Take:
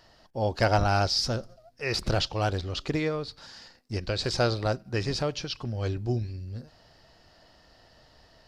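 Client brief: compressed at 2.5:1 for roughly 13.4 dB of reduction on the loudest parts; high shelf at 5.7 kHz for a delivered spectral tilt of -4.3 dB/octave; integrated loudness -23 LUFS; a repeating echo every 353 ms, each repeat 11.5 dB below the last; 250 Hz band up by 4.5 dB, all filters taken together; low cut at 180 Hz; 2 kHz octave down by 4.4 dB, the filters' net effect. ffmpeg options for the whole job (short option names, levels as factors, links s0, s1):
-af "highpass=180,equalizer=f=250:t=o:g=7.5,equalizer=f=2000:t=o:g=-6,highshelf=f=5700:g=-4,acompressor=threshold=0.0112:ratio=2.5,aecho=1:1:353|706|1059:0.266|0.0718|0.0194,volume=6.68"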